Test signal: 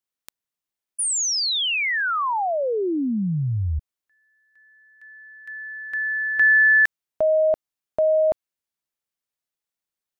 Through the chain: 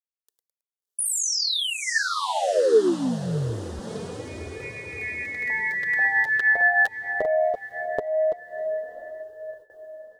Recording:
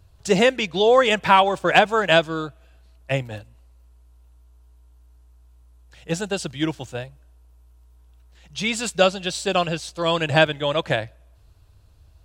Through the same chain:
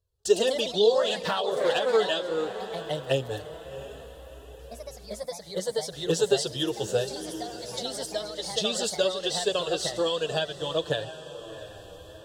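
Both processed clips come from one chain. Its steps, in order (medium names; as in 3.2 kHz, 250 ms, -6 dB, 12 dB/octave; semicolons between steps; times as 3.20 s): treble shelf 3 kHz +10.5 dB; level rider gain up to 9 dB; echo that smears into a reverb 699 ms, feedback 48%, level -16 dB; dynamic bell 3.8 kHz, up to +7 dB, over -29 dBFS, Q 1.3; gate with hold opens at -34 dBFS, closes at -39 dBFS, hold 29 ms, range -21 dB; Butterworth band-stop 2.1 kHz, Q 1.7; compression 6:1, threshold -19 dBFS; flange 0.21 Hz, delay 1.7 ms, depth 8.7 ms, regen +4%; small resonant body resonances 440/1800 Hz, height 13 dB, ringing for 25 ms; ever faster or slower copies 135 ms, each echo +2 st, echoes 3, each echo -6 dB; trim -5 dB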